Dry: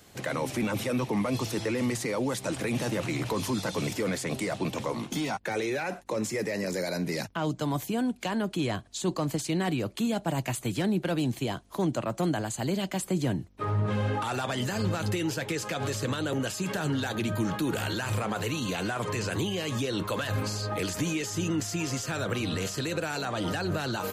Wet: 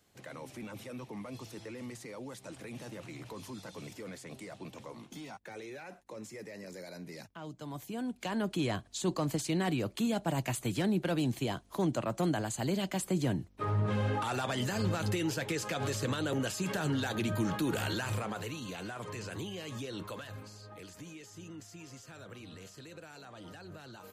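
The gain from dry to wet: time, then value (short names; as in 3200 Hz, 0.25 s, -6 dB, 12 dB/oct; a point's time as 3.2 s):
7.55 s -15 dB
8.45 s -3 dB
17.96 s -3 dB
18.61 s -10.5 dB
20.07 s -10.5 dB
20.48 s -18.5 dB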